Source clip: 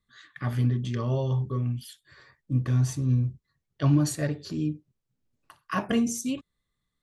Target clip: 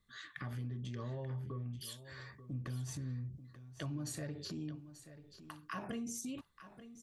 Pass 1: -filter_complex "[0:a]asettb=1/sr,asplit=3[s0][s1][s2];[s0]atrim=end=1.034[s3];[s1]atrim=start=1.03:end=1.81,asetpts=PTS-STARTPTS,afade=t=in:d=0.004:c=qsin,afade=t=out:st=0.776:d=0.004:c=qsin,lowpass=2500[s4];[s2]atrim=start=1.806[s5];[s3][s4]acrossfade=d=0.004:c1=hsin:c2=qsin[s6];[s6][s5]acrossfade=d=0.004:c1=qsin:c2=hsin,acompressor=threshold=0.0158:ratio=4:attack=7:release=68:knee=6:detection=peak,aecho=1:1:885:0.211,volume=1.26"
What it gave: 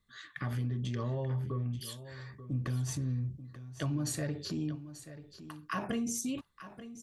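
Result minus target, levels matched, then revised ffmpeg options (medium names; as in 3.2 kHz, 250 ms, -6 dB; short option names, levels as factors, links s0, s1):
compression: peak gain reduction -7.5 dB
-filter_complex "[0:a]asettb=1/sr,asplit=3[s0][s1][s2];[s0]atrim=end=1.034[s3];[s1]atrim=start=1.03:end=1.81,asetpts=PTS-STARTPTS,afade=t=in:d=0.004:c=qsin,afade=t=out:st=0.776:d=0.004:c=qsin,lowpass=2500[s4];[s2]atrim=start=1.806[s5];[s3][s4]acrossfade=d=0.004:c1=hsin:c2=qsin[s6];[s6][s5]acrossfade=d=0.004:c1=qsin:c2=hsin,acompressor=threshold=0.00501:ratio=4:attack=7:release=68:knee=6:detection=peak,aecho=1:1:885:0.211,volume=1.26"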